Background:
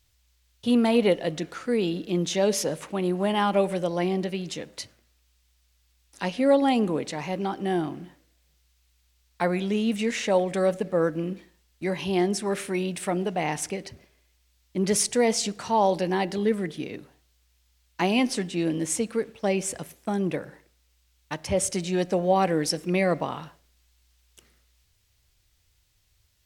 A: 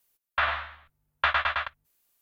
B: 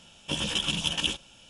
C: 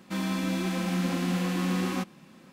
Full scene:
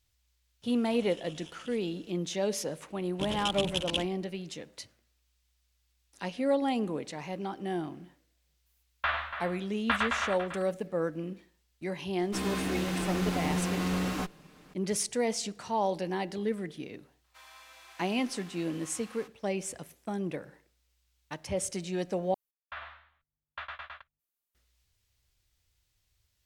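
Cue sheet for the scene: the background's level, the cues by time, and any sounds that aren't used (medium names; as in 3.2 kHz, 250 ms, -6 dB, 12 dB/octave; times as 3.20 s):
background -7.5 dB
0.62 s: add B -9 dB + compression, threshold -40 dBFS
2.90 s: add B -3 dB + local Wiener filter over 25 samples
8.66 s: add A -4.5 dB + echo from a far wall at 49 m, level -9 dB
12.22 s: add C -1 dB + comb filter that takes the minimum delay 6.6 ms
17.24 s: add C -15.5 dB + high-pass 740 Hz 24 dB/octave
22.34 s: replace with A -17 dB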